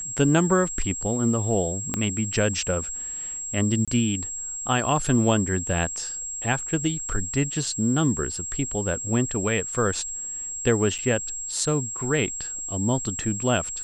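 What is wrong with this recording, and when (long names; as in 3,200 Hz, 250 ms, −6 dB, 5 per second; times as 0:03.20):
whistle 7,600 Hz −30 dBFS
0:01.94: click −10 dBFS
0:03.85–0:03.88: drop-out 26 ms
0:10.98–0:10.99: drop-out 6.6 ms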